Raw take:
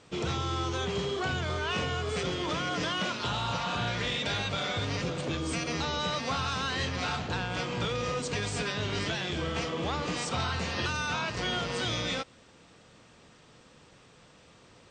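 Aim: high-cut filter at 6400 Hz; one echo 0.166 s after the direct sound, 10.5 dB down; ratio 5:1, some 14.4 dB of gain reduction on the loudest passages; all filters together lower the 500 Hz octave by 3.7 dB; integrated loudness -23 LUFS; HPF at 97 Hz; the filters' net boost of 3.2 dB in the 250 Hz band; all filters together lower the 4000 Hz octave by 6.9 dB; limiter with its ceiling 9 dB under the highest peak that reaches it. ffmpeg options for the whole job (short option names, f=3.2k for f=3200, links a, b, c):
-af "highpass=97,lowpass=6.4k,equalizer=f=250:t=o:g=7,equalizer=f=500:t=o:g=-7,equalizer=f=4k:t=o:g=-8.5,acompressor=threshold=-45dB:ratio=5,alimiter=level_in=18.5dB:limit=-24dB:level=0:latency=1,volume=-18.5dB,aecho=1:1:166:0.299,volume=28dB"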